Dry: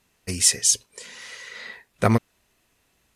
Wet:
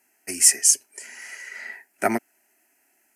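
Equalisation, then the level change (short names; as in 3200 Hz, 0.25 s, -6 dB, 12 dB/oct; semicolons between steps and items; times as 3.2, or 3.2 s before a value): HPF 300 Hz 12 dB/oct; high shelf 11000 Hz +8.5 dB; fixed phaser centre 740 Hz, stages 8; +3.0 dB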